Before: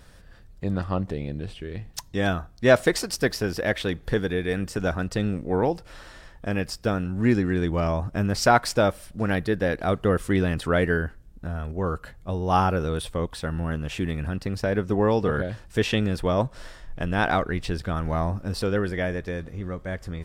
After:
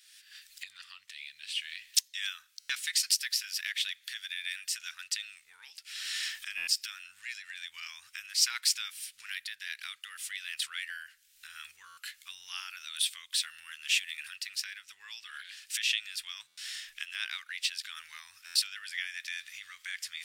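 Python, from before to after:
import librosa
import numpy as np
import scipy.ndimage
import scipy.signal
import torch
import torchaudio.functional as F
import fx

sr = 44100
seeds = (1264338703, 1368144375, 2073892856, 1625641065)

y = fx.recorder_agc(x, sr, target_db=-13.0, rise_db_per_s=39.0, max_gain_db=30)
y = scipy.signal.sosfilt(scipy.signal.cheby2(4, 60, 680.0, 'highpass', fs=sr, output='sos'), y)
y = fx.buffer_glitch(y, sr, at_s=(2.59, 6.57, 11.87, 16.47, 18.45), block=512, repeats=8)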